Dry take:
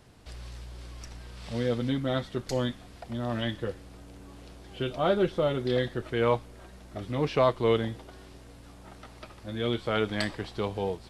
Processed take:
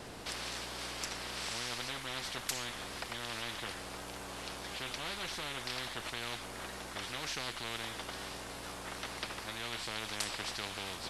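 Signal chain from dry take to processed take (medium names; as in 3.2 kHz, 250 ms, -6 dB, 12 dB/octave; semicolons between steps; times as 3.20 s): wow and flutter 27 cents; spectrum-flattening compressor 10:1; trim -6.5 dB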